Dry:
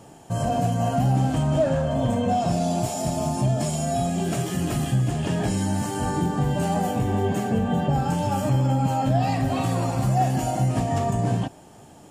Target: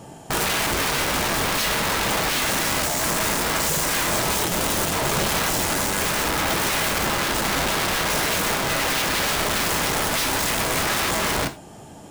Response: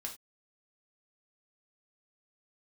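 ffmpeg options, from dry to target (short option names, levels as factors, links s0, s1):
-filter_complex "[0:a]aeval=exprs='(mod(15*val(0)+1,2)-1)/15':c=same,asplit=2[s0][s1];[1:a]atrim=start_sample=2205[s2];[s1][s2]afir=irnorm=-1:irlink=0,volume=1.33[s3];[s0][s3]amix=inputs=2:normalize=0"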